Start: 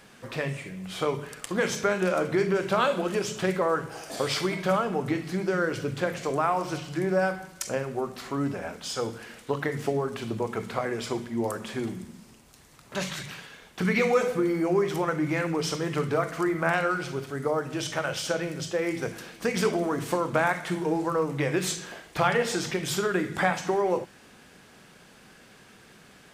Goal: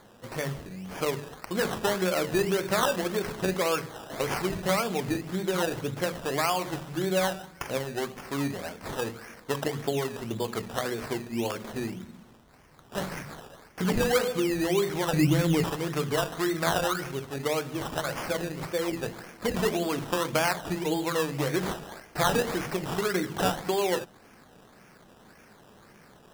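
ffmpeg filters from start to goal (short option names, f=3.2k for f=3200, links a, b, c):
-filter_complex "[0:a]asettb=1/sr,asplit=3[a][b][c];[a]atrim=end=15.134[d];[b]atrim=start=15.13:end=15.64,asetpts=PTS-STARTPTS,afade=t=in:d=0.004:c=qsin,afade=t=out:st=0.506:d=0.004:c=qsin,aemphasis=mode=reproduction:type=riaa[e];[c]atrim=start=15.636[f];[d][e]acrossfade=d=0.004:c1=hsin:c2=qsin[g];[g][f]acrossfade=d=0.004:c1=qsin:c2=hsin,acrusher=samples=16:mix=1:aa=0.000001:lfo=1:lforange=9.6:lforate=1.8,volume=-1.5dB"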